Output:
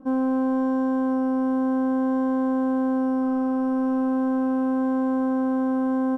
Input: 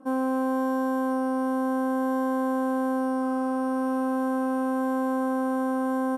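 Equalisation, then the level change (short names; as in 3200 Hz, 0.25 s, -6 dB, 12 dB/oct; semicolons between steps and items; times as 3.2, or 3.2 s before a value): Bessel low-pass 4400 Hz, order 2; low shelf 83 Hz +12 dB; low shelf 300 Hz +11 dB; -3.0 dB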